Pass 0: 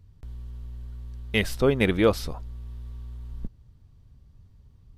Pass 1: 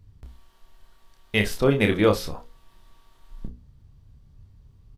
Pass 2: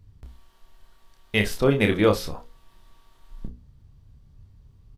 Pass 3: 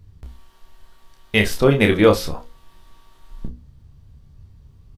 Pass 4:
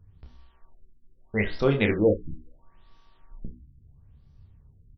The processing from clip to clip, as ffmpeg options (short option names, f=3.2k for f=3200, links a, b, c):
-af "bandreject=f=60:t=h:w=6,bandreject=f=120:t=h:w=6,bandreject=f=180:t=h:w=6,bandreject=f=240:t=h:w=6,bandreject=f=300:t=h:w=6,bandreject=f=360:t=h:w=6,bandreject=f=420:t=h:w=6,bandreject=f=480:t=h:w=6,bandreject=f=540:t=h:w=6,aecho=1:1:29|63:0.531|0.133,volume=1dB"
-af anull
-filter_complex "[0:a]asplit=2[a][b];[b]adelay=13,volume=-11.5dB[c];[a][c]amix=inputs=2:normalize=0,volume=5dB"
-af "bandreject=f=62.11:t=h:w=4,bandreject=f=124.22:t=h:w=4,bandreject=f=186.33:t=h:w=4,bandreject=f=248.44:t=h:w=4,bandreject=f=310.55:t=h:w=4,bandreject=f=372.66:t=h:w=4,bandreject=f=434.77:t=h:w=4,bandreject=f=496.88:t=h:w=4,bandreject=f=558.99:t=h:w=4,bandreject=f=621.1:t=h:w=4,bandreject=f=683.21:t=h:w=4,bandreject=f=745.32:t=h:w=4,bandreject=f=807.43:t=h:w=4,bandreject=f=869.54:t=h:w=4,bandreject=f=931.65:t=h:w=4,bandreject=f=993.76:t=h:w=4,bandreject=f=1.05587k:t=h:w=4,bandreject=f=1.11798k:t=h:w=4,bandreject=f=1.18009k:t=h:w=4,bandreject=f=1.2422k:t=h:w=4,bandreject=f=1.30431k:t=h:w=4,bandreject=f=1.36642k:t=h:w=4,bandreject=f=1.42853k:t=h:w=4,bandreject=f=1.49064k:t=h:w=4,bandreject=f=1.55275k:t=h:w=4,bandreject=f=1.61486k:t=h:w=4,bandreject=f=1.67697k:t=h:w=4,bandreject=f=1.73908k:t=h:w=4,bandreject=f=1.80119k:t=h:w=4,bandreject=f=1.8633k:t=h:w=4,bandreject=f=1.92541k:t=h:w=4,bandreject=f=1.98752k:t=h:w=4,bandreject=f=2.04963k:t=h:w=4,bandreject=f=2.11174k:t=h:w=4,bandreject=f=2.17385k:t=h:w=4,afftfilt=real='re*lt(b*sr/1024,350*pow(6200/350,0.5+0.5*sin(2*PI*0.75*pts/sr)))':imag='im*lt(b*sr/1024,350*pow(6200/350,0.5+0.5*sin(2*PI*0.75*pts/sr)))':win_size=1024:overlap=0.75,volume=-7dB"